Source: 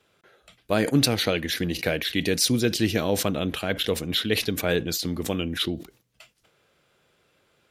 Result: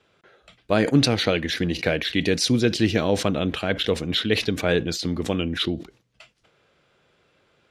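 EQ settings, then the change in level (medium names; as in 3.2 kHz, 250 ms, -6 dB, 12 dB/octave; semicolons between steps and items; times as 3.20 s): distance through air 74 m; +3.0 dB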